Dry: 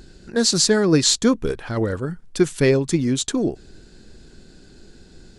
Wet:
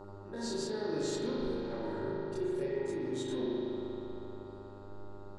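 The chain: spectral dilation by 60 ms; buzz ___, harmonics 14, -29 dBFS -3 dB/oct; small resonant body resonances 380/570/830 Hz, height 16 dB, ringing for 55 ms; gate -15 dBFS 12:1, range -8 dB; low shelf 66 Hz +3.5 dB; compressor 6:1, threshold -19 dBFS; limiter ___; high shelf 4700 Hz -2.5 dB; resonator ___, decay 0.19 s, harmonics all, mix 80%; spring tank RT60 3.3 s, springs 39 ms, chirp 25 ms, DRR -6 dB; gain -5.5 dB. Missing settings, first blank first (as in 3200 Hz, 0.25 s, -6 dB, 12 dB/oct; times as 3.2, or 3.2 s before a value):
100 Hz, -13 dBFS, 930 Hz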